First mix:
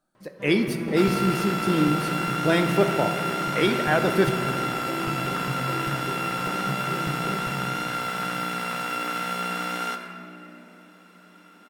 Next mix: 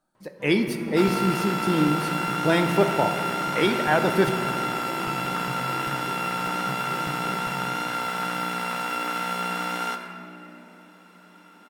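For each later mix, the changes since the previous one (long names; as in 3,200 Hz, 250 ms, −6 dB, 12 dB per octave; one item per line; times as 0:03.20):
first sound −5.0 dB
master: add parametric band 900 Hz +7 dB 0.26 octaves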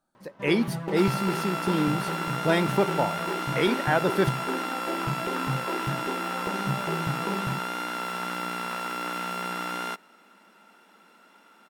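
first sound +10.5 dB
reverb: off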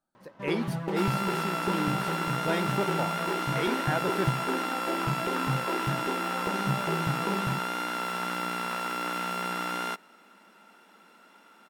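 speech −7.0 dB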